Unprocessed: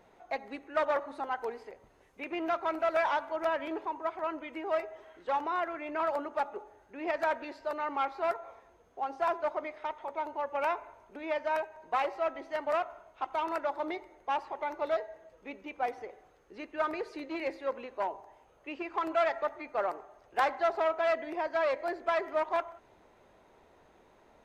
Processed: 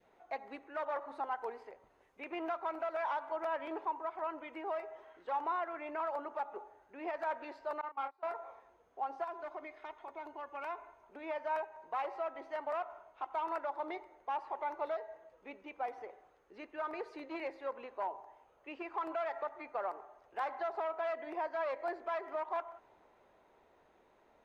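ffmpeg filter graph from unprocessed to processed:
-filter_complex "[0:a]asettb=1/sr,asplit=3[s0][s1][s2];[s0]atrim=end=7.814[s3];[s1]atrim=start=7.81:end=8.34,asetpts=PTS-STARTPTS,afade=t=in:d=0.004:c=qsin,afade=t=out:st=0.526:d=0.004:c=qsin,agate=range=0.0501:threshold=0.0251:ratio=16:release=100:detection=peak,acompressor=threshold=0.0224:ratio=2:attack=3.2:release=140:knee=1:detection=peak,asplit=2[s4][s5];[s5]adelay=29,volume=0.501[s6];[s4][s6]amix=inputs=2:normalize=0,atrim=end_sample=23373[s7];[s2]atrim=start=8.336[s8];[s3][s7]acrossfade=d=0.004:c1=hsin:c2=qsin[s9];[s9][s8]acrossfade=d=0.004:c1=qsin:c2=hsin,asettb=1/sr,asplit=3[s10][s11][s12];[s10]atrim=end=9.244[s13];[s11]atrim=start=9.24:end=11.03,asetpts=PTS-STARTPTS,afade=t=in:d=0.004:c=qsin,afade=t=out:st=1.786:d=0.004:c=qsin,equalizer=f=800:w=0.63:g=-5.5,aecho=1:1:2.8:0.5,atrim=end_sample=78939,acompressor=threshold=0.0112:ratio=2:attack=3.2:release=140:knee=1:detection=peak[s14];[s12]atrim=start=11.026[s15];[s13][s14]acrossfade=d=0.004:c1=hsin:c2=qsin[s16];[s16][s15]acrossfade=d=0.004:c1=qsin:c2=hsin,bass=f=250:g=-5,treble=f=4000:g=-5,alimiter=level_in=1.33:limit=0.0631:level=0:latency=1:release=148,volume=0.75,adynamicequalizer=threshold=0.00355:dfrequency=930:dqfactor=1.2:tfrequency=930:tqfactor=1.2:attack=5:release=100:ratio=0.375:range=3:mode=boostabove:tftype=bell,volume=0.531"

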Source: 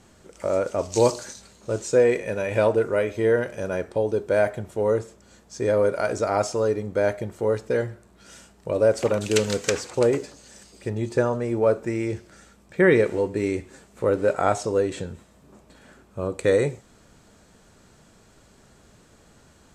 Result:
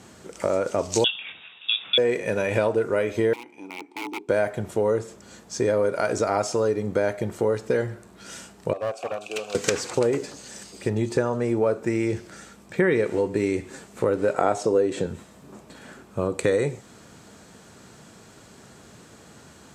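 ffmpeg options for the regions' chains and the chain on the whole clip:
-filter_complex "[0:a]asettb=1/sr,asplit=3[s0][s1][s2];[s0]atrim=end=1.044[s3];[s1]atrim=start=1.04:end=1.98,asetpts=PTS-STARTPTS,afade=t=in:d=0.004:c=qsin,afade=t=out:st=0.936:d=0.004:c=qsin,highpass=f=330:p=1,equalizer=f=1200:t=o:w=0.26:g=14.5,lowpass=f=3300:t=q:w=0.5098,lowpass=f=3300:t=q:w=0.6013,lowpass=f=3300:t=q:w=0.9,lowpass=f=3300:t=q:w=2.563,afreqshift=-3900[s4];[s2]atrim=start=1.976[s5];[s3][s4]acrossfade=d=0.004:c1=hsin:c2=qsin[s6];[s6][s5]acrossfade=d=0.004:c1=qsin:c2=hsin,asettb=1/sr,asplit=3[s7][s8][s9];[s7]atrim=end=3.334[s10];[s8]atrim=start=3.33:end=4.29,asetpts=PTS-STARTPTS,afade=t=in:d=0.004:c=qsin,afade=t=out:st=0.956:d=0.004:c=qsin,aeval=exprs='(mod(7.94*val(0)+1,2)-1)/7.94':c=same,asplit=3[s11][s12][s13];[s11]bandpass=f=300:t=q:w=8,volume=1[s14];[s12]bandpass=f=870:t=q:w=8,volume=0.501[s15];[s13]bandpass=f=2240:t=q:w=8,volume=0.355[s16];[s14][s15][s16]amix=inputs=3:normalize=0,aemphasis=mode=production:type=bsi[s17];[s9]atrim=start=4.286[s18];[s10][s17]acrossfade=d=0.004:c1=hsin:c2=qsin[s19];[s19][s18]acrossfade=d=0.004:c1=qsin:c2=hsin,asettb=1/sr,asplit=3[s20][s21][s22];[s20]atrim=end=8.734[s23];[s21]atrim=start=8.73:end=9.55,asetpts=PTS-STARTPTS,afade=t=in:d=0.004:c=qsin,afade=t=out:st=0.816:d=0.004:c=qsin,asplit=3[s24][s25][s26];[s24]bandpass=f=730:t=q:w=8,volume=1[s27];[s25]bandpass=f=1090:t=q:w=8,volume=0.501[s28];[s26]bandpass=f=2440:t=q:w=8,volume=0.355[s29];[s27][s28][s29]amix=inputs=3:normalize=0,aemphasis=mode=production:type=75fm,aeval=exprs='clip(val(0),-1,0.0251)':c=same[s30];[s22]atrim=start=9.546[s31];[s23][s30]acrossfade=d=0.004:c1=hsin:c2=qsin[s32];[s32][s31]acrossfade=d=0.004:c1=qsin:c2=hsin,asettb=1/sr,asplit=3[s33][s34][s35];[s33]atrim=end=14.364[s36];[s34]atrim=start=14.36:end=15.07,asetpts=PTS-STARTPTS,afade=t=in:d=0.004:c=qsin,afade=t=out:st=0.706:d=0.004:c=qsin,highpass=84,equalizer=f=420:w=0.64:g=6.5[s37];[s35]atrim=start=15.066[s38];[s36][s37]acrossfade=d=0.004:c1=hsin:c2=qsin[s39];[s39][s38]acrossfade=d=0.004:c1=qsin:c2=hsin,highpass=100,equalizer=f=580:t=o:w=0.24:g=-2.5,acompressor=threshold=0.0398:ratio=3,volume=2.24"

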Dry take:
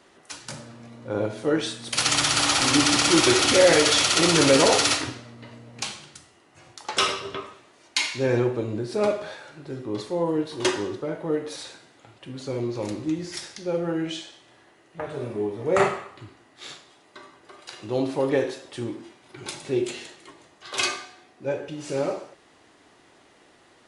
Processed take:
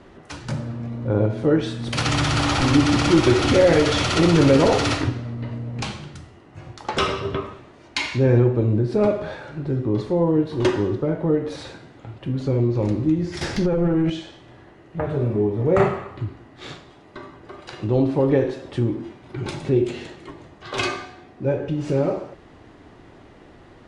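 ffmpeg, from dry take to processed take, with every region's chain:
-filter_complex "[0:a]asettb=1/sr,asplit=3[s0][s1][s2];[s0]atrim=end=13.414[s3];[s1]atrim=start=13.41:end=14.1,asetpts=PTS-STARTPTS,afade=t=in:d=0.004:c=qsin,afade=t=out:st=0.686:d=0.004:c=qsin,bandreject=f=3700:w=23,acompressor=threshold=0.02:ratio=10:attack=3.2:release=140:knee=1:detection=peak,aeval=exprs='0.075*sin(PI/2*2.82*val(0)/0.075)':c=same[s4];[s2]atrim=start=14.096[s5];[s3][s4]acrossfade=d=0.004:c1=hsin:c2=qsin[s6];[s6][s5]acrossfade=d=0.004:c1=qsin:c2=hsin,aemphasis=mode=reproduction:type=riaa,acompressor=threshold=0.0316:ratio=1.5,volume=2"

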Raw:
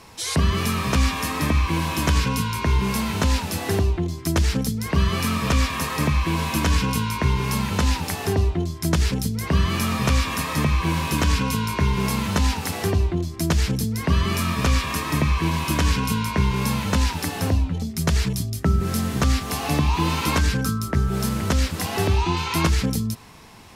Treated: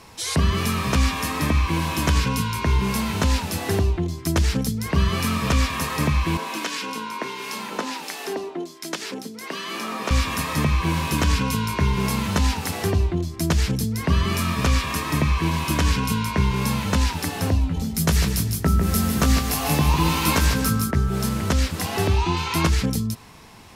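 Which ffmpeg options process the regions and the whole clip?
-filter_complex "[0:a]asettb=1/sr,asplit=3[s0][s1][s2];[s0]atrim=end=6.374[s3];[s1]atrim=start=6.37:end=10.11,asetpts=PTS-STARTPTS,afade=t=in:d=0.004:c=qsin,afade=t=out:st=3.736:d=0.004:c=qsin,acrossover=split=7000[s4][s5];[s5]acompressor=threshold=0.0126:ratio=4:attack=1:release=60[s6];[s4][s6]amix=inputs=2:normalize=0,highpass=f=270:w=0.5412,highpass=f=270:w=1.3066,acrossover=split=1600[s7][s8];[s7]aeval=exprs='val(0)*(1-0.5/2+0.5/2*cos(2*PI*1.4*n/s))':c=same[s9];[s8]aeval=exprs='val(0)*(1-0.5/2-0.5/2*cos(2*PI*1.4*n/s))':c=same[s10];[s9][s10]amix=inputs=2:normalize=0[s11];[s2]atrim=start=10.106[s12];[s3][s11]acrossfade=d=0.004:c1=hsin:c2=qsin[s13];[s13][s12]acrossfade=d=0.004:c1=qsin:c2=hsin,asettb=1/sr,asplit=3[s14][s15][s16];[s14]atrim=end=17.614[s17];[s15]atrim=start=17.61:end=20.91,asetpts=PTS-STARTPTS,afade=t=in:d=0.004:c=qsin,afade=t=out:st=3.296:d=0.004:c=qsin,highshelf=f=11000:g=11,asplit=2[s18][s19];[s19]adelay=19,volume=0.422[s20];[s18][s20]amix=inputs=2:normalize=0,atrim=end_sample=145530,aecho=1:1:150|300|450|600:0.398|0.147|0.0545|0.0202,atrim=end_sample=145530[s21];[s16]atrim=start=20.906[s22];[s17][s21]acrossfade=d=0.004:c1=hsin:c2=qsin[s23];[s23][s22]acrossfade=d=0.004:c1=qsin:c2=hsin"

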